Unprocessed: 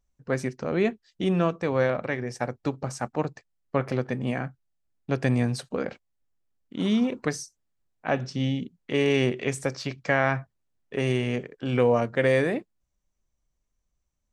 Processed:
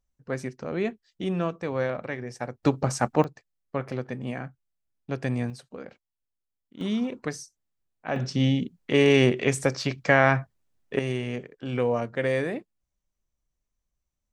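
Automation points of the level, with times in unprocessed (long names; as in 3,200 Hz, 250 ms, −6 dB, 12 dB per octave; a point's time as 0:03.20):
−4 dB
from 0:02.63 +6 dB
from 0:03.24 −4.5 dB
from 0:05.50 −11 dB
from 0:06.81 −4 dB
from 0:08.16 +4 dB
from 0:10.99 −4 dB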